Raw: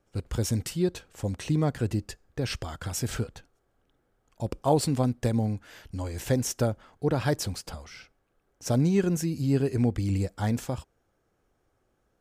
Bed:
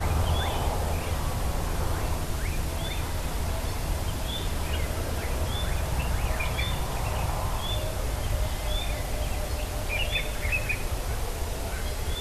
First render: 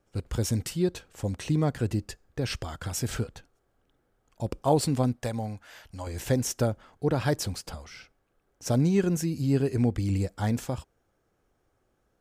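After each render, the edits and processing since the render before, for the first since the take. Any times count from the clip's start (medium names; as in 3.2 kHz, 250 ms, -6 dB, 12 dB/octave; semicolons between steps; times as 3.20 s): 5.16–6.07 s: resonant low shelf 500 Hz -6.5 dB, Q 1.5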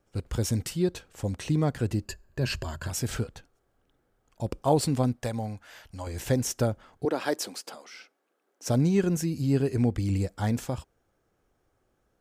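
2.05–2.90 s: rippled EQ curve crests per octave 1.4, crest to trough 10 dB; 7.05–8.68 s: high-pass 260 Hz 24 dB/octave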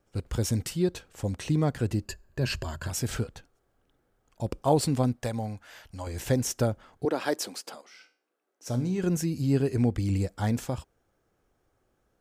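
7.81–9.02 s: feedback comb 61 Hz, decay 0.39 s, mix 70%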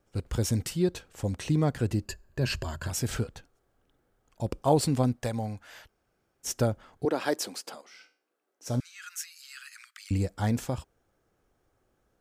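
5.87–6.46 s: room tone, crossfade 0.06 s; 8.80–10.11 s: steep high-pass 1.2 kHz 96 dB/octave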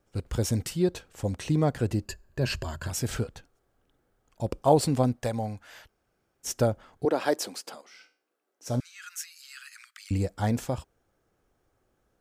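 dynamic bell 630 Hz, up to +4 dB, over -37 dBFS, Q 1.1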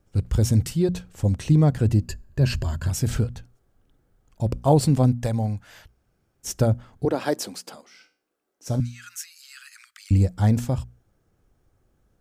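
tone controls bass +11 dB, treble +2 dB; hum notches 60/120/180/240 Hz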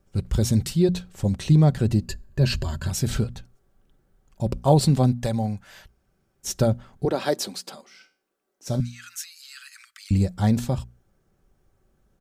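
dynamic bell 3.9 kHz, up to +7 dB, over -56 dBFS, Q 3; comb 5.2 ms, depth 35%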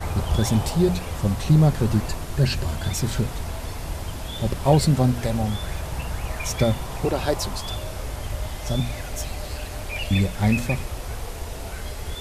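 add bed -1.5 dB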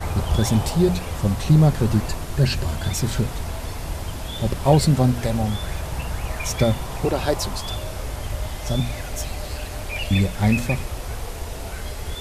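trim +1.5 dB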